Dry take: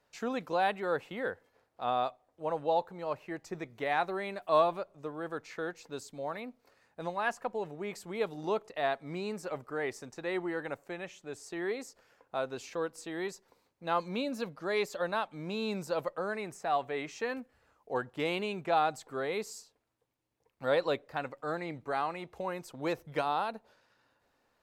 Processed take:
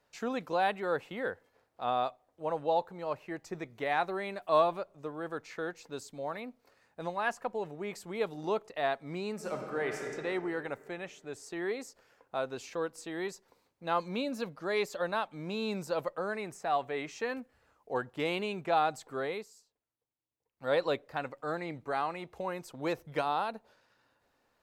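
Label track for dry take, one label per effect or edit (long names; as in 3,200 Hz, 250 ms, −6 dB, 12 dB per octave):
9.330000	10.070000	thrown reverb, RT60 2.7 s, DRR 1.5 dB
19.260000	20.750000	duck −13 dB, fades 0.22 s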